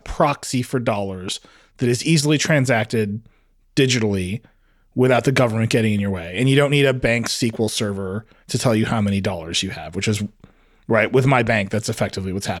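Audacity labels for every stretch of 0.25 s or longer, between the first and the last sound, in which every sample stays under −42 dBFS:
3.270000	3.770000	silence
4.450000	4.960000	silence
10.500000	10.890000	silence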